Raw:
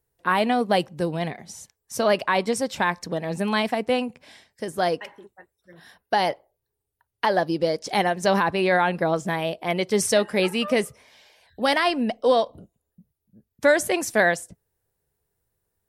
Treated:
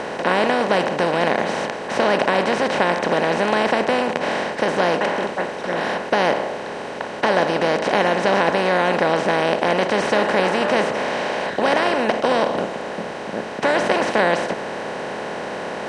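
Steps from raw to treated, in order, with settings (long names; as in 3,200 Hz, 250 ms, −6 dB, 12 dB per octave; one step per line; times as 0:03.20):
compressor on every frequency bin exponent 0.2
high-frequency loss of the air 120 metres
level −5.5 dB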